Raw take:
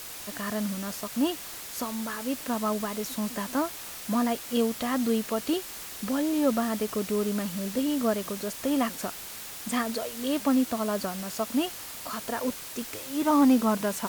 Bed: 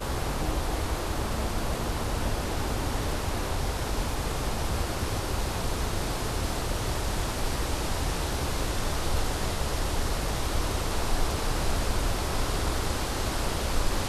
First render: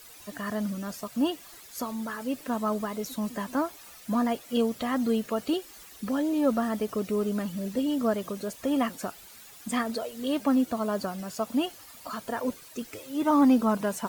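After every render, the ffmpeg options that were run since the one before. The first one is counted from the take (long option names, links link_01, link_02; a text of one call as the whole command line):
ffmpeg -i in.wav -af "afftdn=noise_reduction=12:noise_floor=-41" out.wav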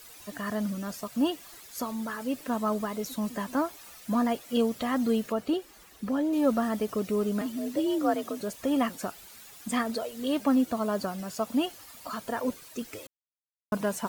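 ffmpeg -i in.wav -filter_complex "[0:a]asettb=1/sr,asplit=3[link_01][link_02][link_03];[link_01]atrim=end=5.324[link_04];[link_02]atrim=start=5.32:end=6.33,asetpts=PTS-STARTPTS,afade=type=in:duration=0.004:curve=qsin,afade=type=out:start_time=1.006:duration=0.004:curve=qsin,highshelf=frequency=2500:gain=-7.5[link_05];[link_03]atrim=start=6.326[link_06];[link_04][link_05]acrossfade=duration=0.004:curve1=hsin:curve2=qsin[link_07];[link_07][link_06]acrossfade=duration=0.004:curve1=qsin:curve2=hsin,asettb=1/sr,asplit=3[link_08][link_09][link_10];[link_08]atrim=end=7.414[link_11];[link_09]atrim=start=7.41:end=8.41,asetpts=PTS-STARTPTS,afade=type=in:duration=0.004:curve=qsin,afade=type=out:start_time=0.996:duration=0.004:curve=qsin,afreqshift=53[link_12];[link_10]atrim=start=8.406[link_13];[link_11][link_12]acrossfade=duration=0.004:curve1=hsin:curve2=qsin[link_14];[link_14][link_13]acrossfade=duration=0.004:curve1=qsin:curve2=hsin,asplit=3[link_15][link_16][link_17];[link_15]atrim=end=13.07,asetpts=PTS-STARTPTS,afade=type=out:start_time=13.066:duration=0.004:curve=hsin[link_18];[link_16]atrim=start=13.07:end=13.72,asetpts=PTS-STARTPTS,volume=0[link_19];[link_17]atrim=start=13.72,asetpts=PTS-STARTPTS,afade=type=in:duration=0.004:curve=hsin[link_20];[link_18][link_19][link_20]concat=n=3:v=0:a=1" out.wav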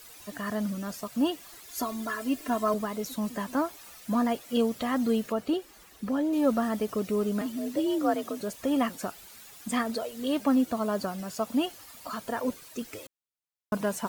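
ffmpeg -i in.wav -filter_complex "[0:a]asettb=1/sr,asplit=3[link_01][link_02][link_03];[link_01]atrim=end=1.674[link_04];[link_02]atrim=start=1.67:end=2.74,asetpts=PTS-STARTPTS,afade=type=in:duration=0.004:curve=qsin,afade=type=out:start_time=1.066:duration=0.004:curve=qsin,aecho=1:1:2.9:0.88,atrim=end_sample=47187[link_05];[link_03]atrim=start=2.736[link_06];[link_04][link_05]acrossfade=duration=0.004:curve1=hsin:curve2=qsin[link_07];[link_07][link_06]acrossfade=duration=0.004:curve1=qsin:curve2=hsin" out.wav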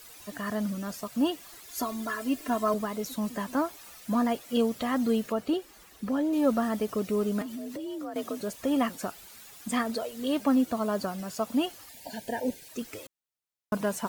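ffmpeg -i in.wav -filter_complex "[0:a]asettb=1/sr,asplit=3[link_01][link_02][link_03];[link_01]atrim=end=7.424[link_04];[link_02]atrim=start=7.42:end=8.16,asetpts=PTS-STARTPTS,afade=type=in:duration=0.004:curve=qsin,afade=type=out:start_time=0.736:duration=0.004:curve=qsin,acompressor=threshold=-34dB:ratio=6:attack=3.2:release=140:knee=1:detection=peak[link_05];[link_03]atrim=start=8.156[link_06];[link_04][link_05]acrossfade=duration=0.004:curve1=hsin:curve2=qsin[link_07];[link_07][link_06]acrossfade=duration=0.004:curve1=qsin:curve2=hsin,asettb=1/sr,asplit=3[link_08][link_09][link_10];[link_08]atrim=end=11.894[link_11];[link_09]atrim=start=11.89:end=12.69,asetpts=PTS-STARTPTS,afade=type=in:duration=0.004:curve=qsin,afade=type=out:start_time=0.796:duration=0.004:curve=qsin,asuperstop=centerf=1200:order=12:qfactor=2[link_12];[link_10]atrim=start=12.686[link_13];[link_11][link_12]acrossfade=duration=0.004:curve1=hsin:curve2=qsin[link_14];[link_14][link_13]acrossfade=duration=0.004:curve1=qsin:curve2=hsin" out.wav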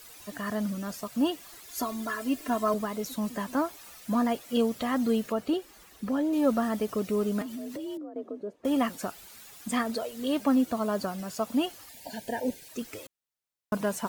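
ffmpeg -i in.wav -filter_complex "[0:a]asettb=1/sr,asplit=3[link_01][link_02][link_03];[link_01]atrim=end=7.974[link_04];[link_02]atrim=start=7.97:end=8.65,asetpts=PTS-STARTPTS,afade=type=in:duration=0.004:curve=qsin,afade=type=out:start_time=0.676:duration=0.004:curve=qsin,bandpass=frequency=370:width_type=q:width=1.8[link_05];[link_03]atrim=start=8.646[link_06];[link_04][link_05]acrossfade=duration=0.004:curve1=hsin:curve2=qsin[link_07];[link_07][link_06]acrossfade=duration=0.004:curve1=qsin:curve2=hsin" out.wav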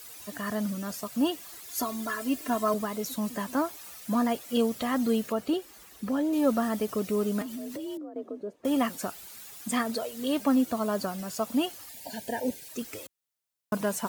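ffmpeg -i in.wav -af "highpass=45,highshelf=frequency=5900:gain=5" out.wav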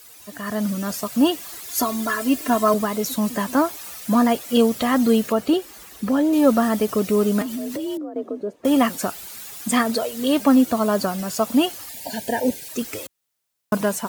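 ffmpeg -i in.wav -af "dynaudnorm=framelen=220:gausssize=5:maxgain=9dB" out.wav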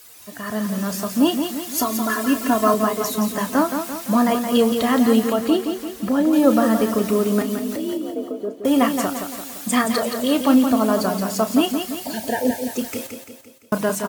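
ffmpeg -i in.wav -filter_complex "[0:a]asplit=2[link_01][link_02];[link_02]adelay=32,volume=-12dB[link_03];[link_01][link_03]amix=inputs=2:normalize=0,asplit=2[link_04][link_05];[link_05]aecho=0:1:171|342|513|684|855|1026:0.447|0.228|0.116|0.0593|0.0302|0.0154[link_06];[link_04][link_06]amix=inputs=2:normalize=0" out.wav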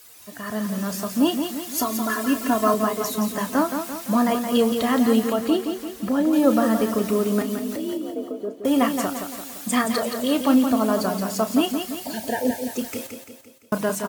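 ffmpeg -i in.wav -af "volume=-2.5dB" out.wav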